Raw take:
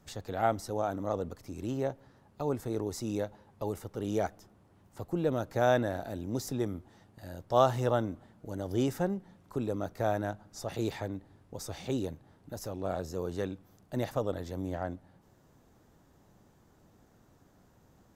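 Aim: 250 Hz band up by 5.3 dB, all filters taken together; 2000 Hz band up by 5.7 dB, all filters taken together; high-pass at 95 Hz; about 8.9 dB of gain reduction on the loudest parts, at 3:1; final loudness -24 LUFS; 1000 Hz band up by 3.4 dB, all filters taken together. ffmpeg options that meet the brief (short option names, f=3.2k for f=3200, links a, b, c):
-af "highpass=95,equalizer=f=250:t=o:g=6.5,equalizer=f=1k:t=o:g=3,equalizer=f=2k:t=o:g=6.5,acompressor=threshold=-28dB:ratio=3,volume=11dB"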